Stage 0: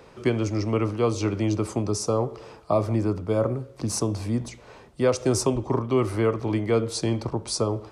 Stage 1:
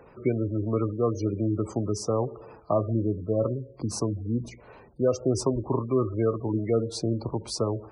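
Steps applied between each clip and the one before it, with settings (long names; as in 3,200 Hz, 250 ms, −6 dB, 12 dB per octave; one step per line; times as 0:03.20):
high-shelf EQ 8,900 Hz −9.5 dB
gate on every frequency bin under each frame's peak −20 dB strong
level −2 dB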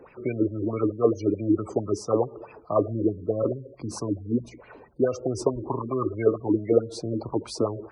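auto-filter bell 4.6 Hz 280–2,600 Hz +16 dB
level −4.5 dB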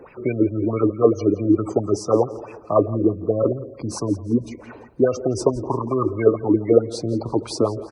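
repeating echo 170 ms, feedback 46%, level −18 dB
level +5.5 dB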